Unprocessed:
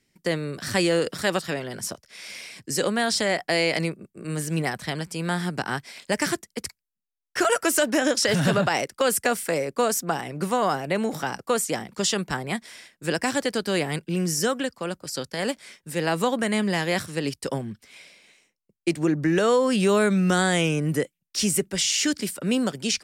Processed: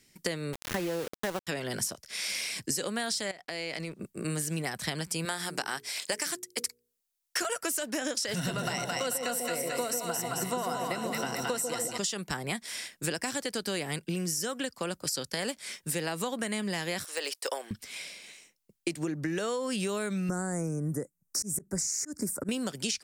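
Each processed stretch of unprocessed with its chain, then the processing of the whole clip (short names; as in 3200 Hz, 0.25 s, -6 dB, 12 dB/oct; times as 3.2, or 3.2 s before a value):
0.53–1.47 self-modulated delay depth 0.086 ms + LPF 1700 Hz + sample gate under -29.5 dBFS
3.31–4 G.711 law mismatch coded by A + high shelf 9000 Hz -11 dB + compressor 8:1, threshold -36 dBFS
5.25–7.42 tone controls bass -13 dB, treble +3 dB + notches 60/120/180/240/300/360/420/480 Hz + short-mantissa float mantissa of 8-bit
8.36–11.98 ripple EQ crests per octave 2, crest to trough 9 dB + split-band echo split 750 Hz, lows 0.143 s, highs 0.22 s, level -3 dB
17.04–17.71 HPF 500 Hz 24 dB/oct + de-esser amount 85%
20.29–22.49 Chebyshev band-stop 1400–6700 Hz + low shelf 450 Hz +9 dB + auto swell 0.269 s
whole clip: high shelf 3600 Hz +8.5 dB; compressor 12:1, threshold -32 dBFS; gain +3 dB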